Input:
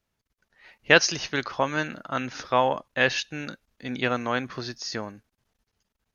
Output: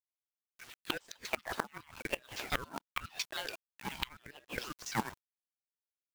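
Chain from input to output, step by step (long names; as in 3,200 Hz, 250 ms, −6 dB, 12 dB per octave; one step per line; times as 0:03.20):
pitch shifter gated in a rhythm +3.5 semitones, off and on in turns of 91 ms
auto-filter band-pass saw down 7.2 Hz 770–4,200 Hz
high-pass with resonance 530 Hz, resonance Q 4.9
log-companded quantiser 4 bits
gate with flip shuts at −22 dBFS, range −27 dB
ring modulator whose carrier an LFO sweeps 730 Hz, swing 55%, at 0.9 Hz
level +6.5 dB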